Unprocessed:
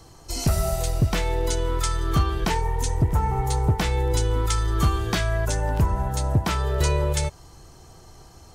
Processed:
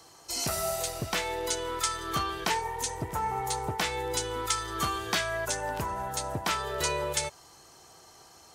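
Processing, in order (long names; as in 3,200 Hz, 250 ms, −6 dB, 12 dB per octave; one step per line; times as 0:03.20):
high-pass filter 750 Hz 6 dB per octave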